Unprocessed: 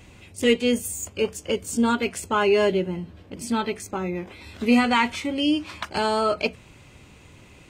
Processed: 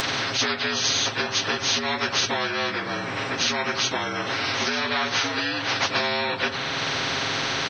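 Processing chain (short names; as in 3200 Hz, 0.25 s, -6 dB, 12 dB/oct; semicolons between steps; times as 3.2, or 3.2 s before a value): inharmonic rescaling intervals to 79%; compressor, threshold -27 dBFS, peak gain reduction 12 dB; HPF 510 Hz 6 dB/oct; comb 7.4 ms, depth 92%; upward compressor, threshold -38 dBFS; spectral compressor 4:1; gain +6.5 dB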